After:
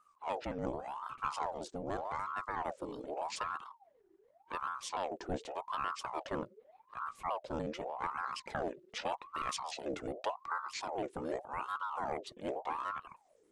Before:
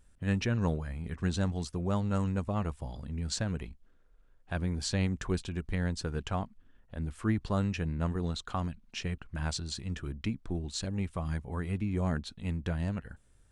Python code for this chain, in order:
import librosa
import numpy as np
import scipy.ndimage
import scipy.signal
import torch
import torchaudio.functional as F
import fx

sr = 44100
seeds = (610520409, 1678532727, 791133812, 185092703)

y = fx.pitch_trill(x, sr, semitones=-4.0, every_ms=73)
y = fx.rider(y, sr, range_db=5, speed_s=0.5)
y = fx.ring_lfo(y, sr, carrier_hz=790.0, swing_pct=55, hz=0.85)
y = y * 10.0 ** (-3.0 / 20.0)